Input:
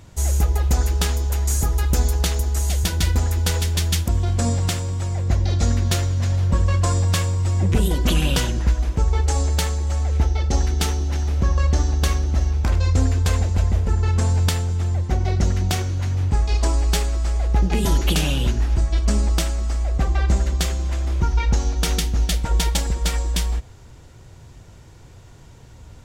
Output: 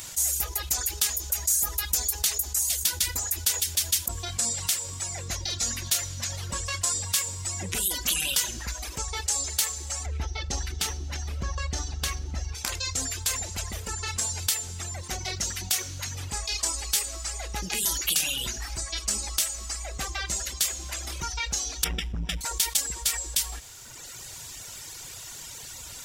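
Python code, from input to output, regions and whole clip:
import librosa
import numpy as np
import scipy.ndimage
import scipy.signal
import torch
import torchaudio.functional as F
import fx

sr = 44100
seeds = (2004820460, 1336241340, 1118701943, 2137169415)

y = fx.chain(x, sr, fx.lowpass(hz=2700.0, slope=6),
    fx.low_shelf(hz=220.0, db=9.0), at=(10.06, 12.55))
y = fx.chain(y, sr, fx.savgol(points=25),
    fx.low_shelf(hz=400.0, db=11.0),
    fx.transformer_sat(knee_hz=89.0), at=(21.84, 22.41))
y = fx.dereverb_blind(y, sr, rt60_s=1.1)
y = scipy.signal.lfilter([1.0, -0.97], [1.0], y)
y = fx.env_flatten(y, sr, amount_pct=50)
y = F.gain(torch.from_numpy(y), 2.5).numpy()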